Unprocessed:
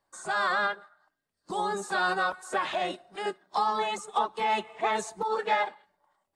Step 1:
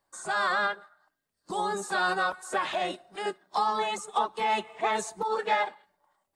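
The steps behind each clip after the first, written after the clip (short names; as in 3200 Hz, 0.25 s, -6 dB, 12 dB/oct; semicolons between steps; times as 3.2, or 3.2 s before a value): high shelf 8100 Hz +5 dB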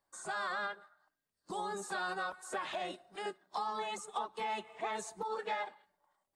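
compressor 2:1, threshold -31 dBFS, peak gain reduction 6 dB; gain -6 dB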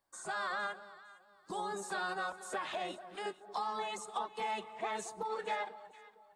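echo with dull and thin repeats by turns 0.229 s, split 930 Hz, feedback 53%, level -12.5 dB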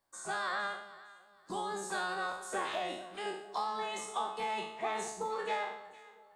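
spectral trails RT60 0.66 s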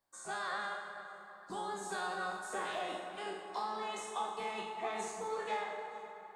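plate-style reverb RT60 4 s, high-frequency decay 0.45×, DRR 4 dB; gain -4 dB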